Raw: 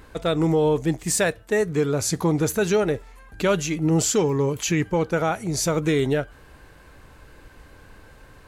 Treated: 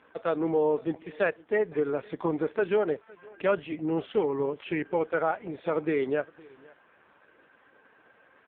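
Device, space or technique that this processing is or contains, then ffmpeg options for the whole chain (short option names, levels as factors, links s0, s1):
satellite phone: -filter_complex "[0:a]asettb=1/sr,asplit=3[s0][s1][s2];[s0]atrim=end=3.504[s3];[s1]atrim=start=3.5:end=4.79,asetpts=PTS-STARTPTS,afade=t=in:d=0.004:c=qsin,afade=t=out:st=1.286:d=0.004:c=qsin,highshelf=f=2800:g=-2.5[s4];[s2]atrim=start=4.786[s5];[s3][s4]acrossfade=d=0.004:c1=hsin:c2=qsin[s6];[s6][s5]acrossfade=d=0.004:c1=qsin:c2=hsin,highpass=340,lowpass=3300,aecho=1:1:512:0.0631,volume=0.75" -ar 8000 -c:a libopencore_amrnb -b:a 4750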